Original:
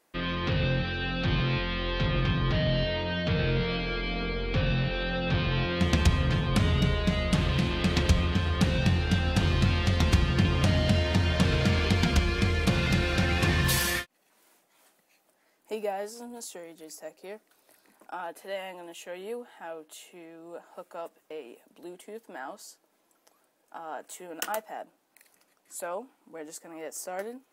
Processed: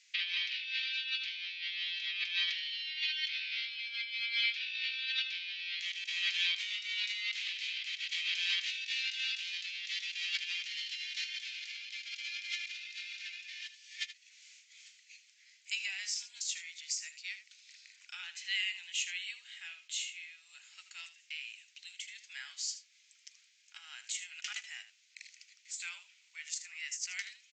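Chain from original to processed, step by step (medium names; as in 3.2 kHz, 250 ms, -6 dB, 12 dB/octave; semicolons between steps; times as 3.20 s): Chebyshev high-pass 2.2 kHz, order 4; compressor with a negative ratio -43 dBFS, ratio -0.5; resampled via 16 kHz; delay 78 ms -12.5 dB; trim +6.5 dB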